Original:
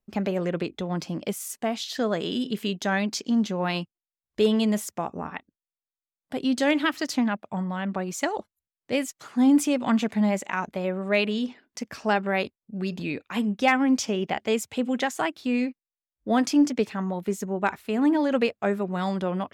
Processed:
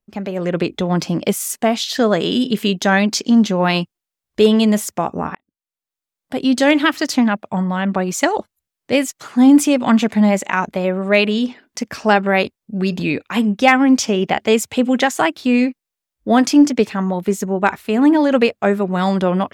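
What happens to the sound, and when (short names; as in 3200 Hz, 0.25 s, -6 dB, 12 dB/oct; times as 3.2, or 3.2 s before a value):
5.35–6.53 fade in
whole clip: AGC gain up to 12 dB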